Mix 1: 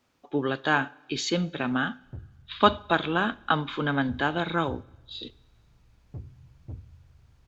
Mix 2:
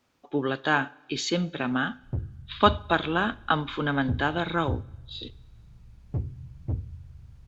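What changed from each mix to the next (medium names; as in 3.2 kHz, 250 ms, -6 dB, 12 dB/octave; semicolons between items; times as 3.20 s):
background +10.0 dB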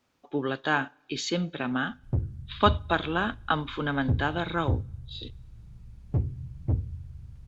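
speech: send -9.0 dB; background +3.5 dB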